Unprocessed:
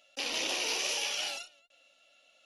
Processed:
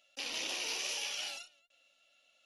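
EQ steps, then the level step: bell 500 Hz -4 dB 2.2 oct; -4.5 dB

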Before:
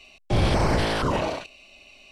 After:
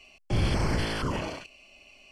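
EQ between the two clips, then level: dynamic EQ 690 Hz, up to -7 dB, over -40 dBFS, Q 0.93; Butterworth band-stop 3800 Hz, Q 6.5; -3.5 dB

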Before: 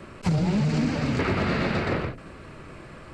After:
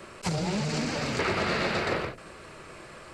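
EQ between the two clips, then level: tone controls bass -9 dB, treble +7 dB; bell 270 Hz -7 dB 0.26 oct; 0.0 dB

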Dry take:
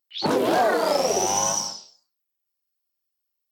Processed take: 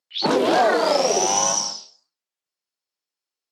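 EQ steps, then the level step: dynamic EQ 3900 Hz, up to +3 dB, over -40 dBFS, Q 0.9; BPF 160–8000 Hz; +2.5 dB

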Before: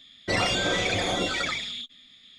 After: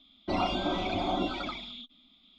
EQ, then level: air absorption 350 m; fixed phaser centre 480 Hz, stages 6; +2.5 dB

